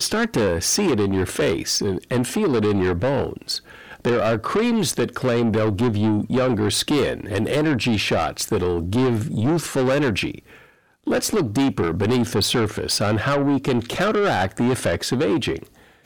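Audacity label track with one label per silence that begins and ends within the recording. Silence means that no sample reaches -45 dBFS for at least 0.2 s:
10.740000	11.040000	silence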